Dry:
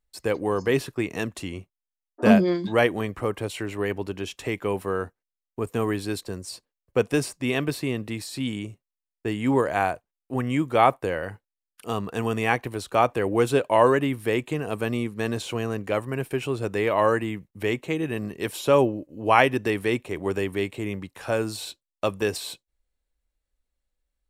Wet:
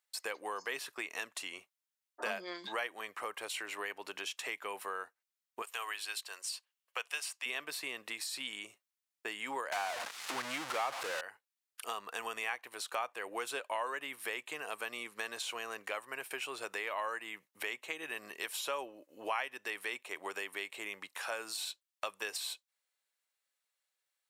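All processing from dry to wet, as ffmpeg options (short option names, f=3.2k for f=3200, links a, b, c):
-filter_complex "[0:a]asettb=1/sr,asplit=3[a][b][c];[a]atrim=end=5.624[d];[b]atrim=start=5.62:end=7.46,asetpts=PTS-STARTPTS,afade=t=in:d=0.004:c=qsin,afade=t=out:st=1.836:d=0.004:c=qsin,highpass=770,equalizer=f=2.9k:w=3.3:g=7[e];[c]atrim=start=7.456[f];[d][e]acrossfade=d=0.004:c1=hsin:c2=qsin[g];[g][f]acrossfade=d=0.004:c1=qsin:c2=hsin,asettb=1/sr,asplit=3[h][i][j];[h]atrim=end=9.724[k];[i]atrim=start=9.72:end=11.21,asetpts=PTS-STARTPTS,afade=t=in:d=0.004:c=qsin,afade=t=out:st=1.486:d=0.004:c=qsin,aeval=exprs='val(0)+0.5*0.119*sgn(val(0))':c=same,lowshelf=f=220:g=10,adynamicsmooth=sensitivity=2.5:basefreq=6.1k[l];[j]atrim=start=11.206[m];[k][l]acrossfade=d=0.004:c1=hsin:c2=qsin[n];[n][m]acrossfade=d=0.004:c1=qsin:c2=hsin,highpass=1k,acompressor=threshold=-43dB:ratio=3,volume=4dB"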